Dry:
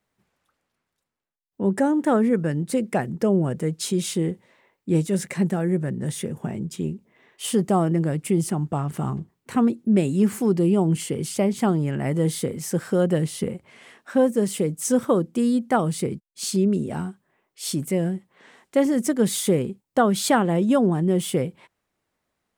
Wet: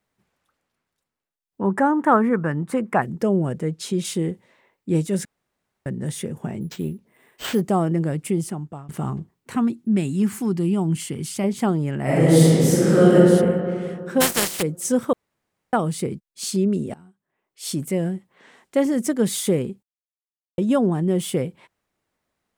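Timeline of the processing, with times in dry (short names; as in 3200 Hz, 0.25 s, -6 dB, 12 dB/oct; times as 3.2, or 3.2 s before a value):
1.61–3.02 EQ curve 560 Hz 0 dB, 1100 Hz +13 dB, 4300 Hz -9 dB, 11000 Hz -6 dB
3.58–4.05 high shelf 6100 Hz -8.5 dB
5.25–5.86 room tone
6.61–7.61 careless resampling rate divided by 4×, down none, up hold
8.24–8.89 fade out, to -18.5 dB
9.56–11.44 bell 510 Hz -10.5 dB
12.02–13.15 reverb throw, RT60 2.4 s, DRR -9.5 dB
14.2–14.61 spectral contrast lowered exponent 0.29
15.13–15.73 room tone
16.94–17.72 fade in quadratic, from -21 dB
19.83–20.58 mute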